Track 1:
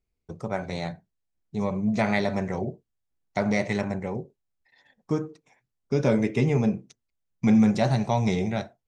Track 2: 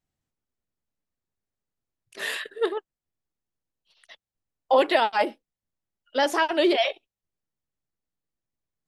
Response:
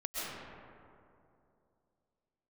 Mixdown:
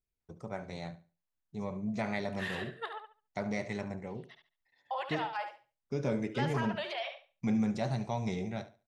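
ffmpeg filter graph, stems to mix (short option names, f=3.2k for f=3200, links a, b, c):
-filter_complex "[0:a]volume=-10.5dB,asplit=2[a][b];[b]volume=-15.5dB[c];[1:a]highpass=f=720:w=0.5412,highpass=f=720:w=1.3066,aemphasis=mode=reproduction:type=75kf,alimiter=limit=-22.5dB:level=0:latency=1:release=288,adelay=200,volume=-4.5dB,asplit=2[d][e];[e]volume=-8dB[f];[c][f]amix=inputs=2:normalize=0,aecho=0:1:71|142|213|284:1|0.23|0.0529|0.0122[g];[a][d][g]amix=inputs=3:normalize=0"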